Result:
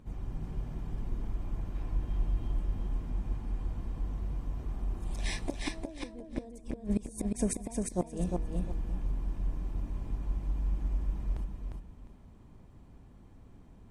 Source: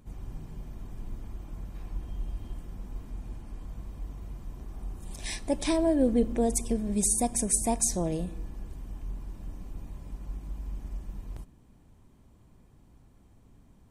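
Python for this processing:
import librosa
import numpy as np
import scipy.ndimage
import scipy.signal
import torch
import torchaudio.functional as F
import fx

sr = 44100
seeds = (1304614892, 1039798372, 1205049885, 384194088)

y = fx.lowpass(x, sr, hz=3200.0, slope=6)
y = fx.gate_flip(y, sr, shuts_db=-21.0, range_db=-25)
y = fx.echo_feedback(y, sr, ms=353, feedback_pct=24, wet_db=-3.5)
y = y * 10.0 ** (2.0 / 20.0)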